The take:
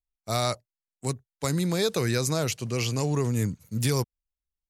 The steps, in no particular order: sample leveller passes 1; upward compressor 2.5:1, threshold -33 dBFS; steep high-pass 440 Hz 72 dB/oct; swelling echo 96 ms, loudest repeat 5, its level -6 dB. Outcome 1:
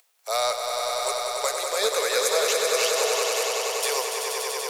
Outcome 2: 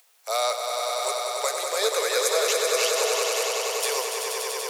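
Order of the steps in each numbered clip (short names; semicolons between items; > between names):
upward compressor > steep high-pass > sample leveller > swelling echo; sample leveller > steep high-pass > upward compressor > swelling echo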